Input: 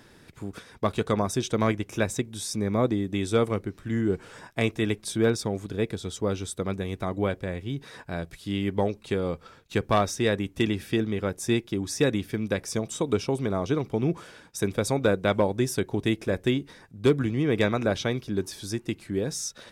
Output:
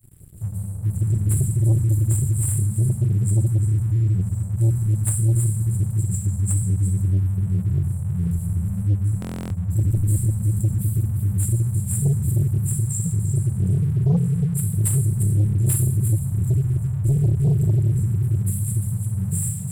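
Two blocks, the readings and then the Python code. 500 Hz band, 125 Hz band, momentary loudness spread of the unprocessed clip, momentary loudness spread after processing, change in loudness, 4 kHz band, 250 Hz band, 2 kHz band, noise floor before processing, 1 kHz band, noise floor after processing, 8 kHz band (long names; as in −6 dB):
−13.5 dB, +14.5 dB, 8 LU, 5 LU, +6.0 dB, below −15 dB, −1.0 dB, below −15 dB, −54 dBFS, below −15 dB, −29 dBFS, +8.0 dB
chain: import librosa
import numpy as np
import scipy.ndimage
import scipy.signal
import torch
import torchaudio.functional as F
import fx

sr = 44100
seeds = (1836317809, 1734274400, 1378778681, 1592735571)

p1 = fx.brickwall_bandstop(x, sr, low_hz=190.0, high_hz=7200.0)
p2 = fx.high_shelf(p1, sr, hz=9500.0, db=11.0)
p3 = fx.level_steps(p2, sr, step_db=15)
p4 = p2 + (p3 * 10.0 ** (1.5 / 20.0))
p5 = fx.peak_eq(p4, sr, hz=81.0, db=10.5, octaves=0.29)
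p6 = p5 + 10.0 ** (-9.5 / 20.0) * np.pad(p5, (int(348 * sr / 1000.0), 0))[:len(p5)]
p7 = fx.room_shoebox(p6, sr, seeds[0], volume_m3=1600.0, walls='mixed', distance_m=3.8)
p8 = fx.leveller(p7, sr, passes=2)
p9 = fx.buffer_glitch(p8, sr, at_s=(9.2,), block=1024, repeats=12)
y = p9 * 10.0 ** (-7.5 / 20.0)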